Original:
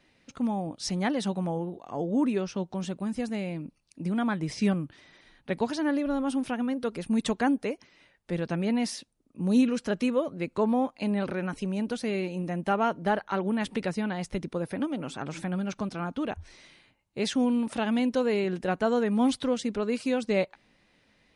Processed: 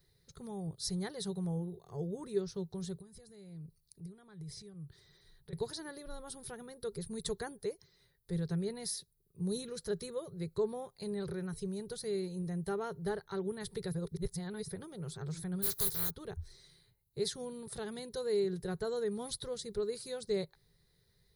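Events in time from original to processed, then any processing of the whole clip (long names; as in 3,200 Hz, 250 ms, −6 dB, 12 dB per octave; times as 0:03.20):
0:02.94–0:05.53: downward compressor 12 to 1, threshold −39 dBFS
0:13.92–0:14.68: reverse
0:15.62–0:16.09: compressing power law on the bin magnitudes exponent 0.33
whole clip: drawn EQ curve 160 Hz 0 dB, 270 Hz −30 dB, 400 Hz −2 dB, 590 Hz −19 dB, 1,900 Hz −14 dB, 2,700 Hz −26 dB, 4,000 Hz −2 dB, 5,800 Hz −8 dB, 8,500 Hz −4 dB, 12,000 Hz +13 dB; level +1 dB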